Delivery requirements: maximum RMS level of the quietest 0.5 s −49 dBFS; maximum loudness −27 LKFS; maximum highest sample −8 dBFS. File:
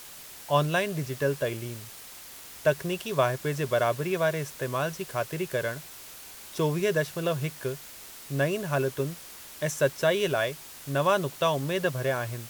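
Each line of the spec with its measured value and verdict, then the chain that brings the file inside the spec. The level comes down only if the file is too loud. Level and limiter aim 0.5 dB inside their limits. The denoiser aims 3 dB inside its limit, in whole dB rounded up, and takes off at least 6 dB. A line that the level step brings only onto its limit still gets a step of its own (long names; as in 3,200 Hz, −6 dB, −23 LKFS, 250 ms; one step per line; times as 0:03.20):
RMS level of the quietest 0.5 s −45 dBFS: out of spec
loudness −28.5 LKFS: in spec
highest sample −9.0 dBFS: in spec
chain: broadband denoise 7 dB, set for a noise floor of −45 dBFS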